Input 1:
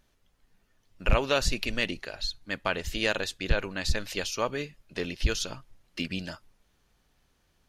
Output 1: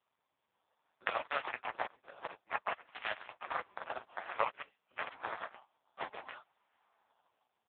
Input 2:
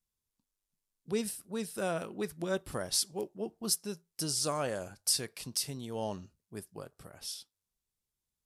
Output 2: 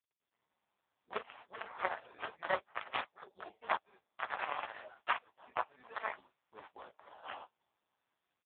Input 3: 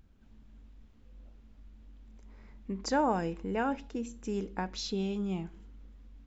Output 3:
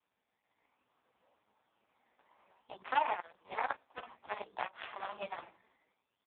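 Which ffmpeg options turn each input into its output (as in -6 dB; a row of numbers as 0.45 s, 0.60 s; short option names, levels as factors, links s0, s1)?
-filter_complex "[0:a]flanger=delay=18.5:depth=5.7:speed=2.9,dynaudnorm=f=150:g=7:m=6.31,asplit=2[s0][s1];[s1]adelay=16,volume=0.562[s2];[s0][s2]amix=inputs=2:normalize=0,flanger=delay=4.4:depth=5:regen=-35:speed=0.34:shape=sinusoidal,acrusher=samples=15:mix=1:aa=0.000001:lfo=1:lforange=15:lforate=0.57,equalizer=f=870:t=o:w=1.1:g=8.5,aeval=exprs='1*(cos(1*acos(clip(val(0)/1,-1,1)))-cos(1*PI/2))+0.158*(cos(7*acos(clip(val(0)/1,-1,1)))-cos(7*PI/2))':c=same,acompressor=threshold=0.0158:ratio=6,highpass=580,volume=2.82" -ar 8000 -c:a libopencore_amrnb -b:a 4750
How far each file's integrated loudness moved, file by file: -10.5 LU, -6.5 LU, -5.0 LU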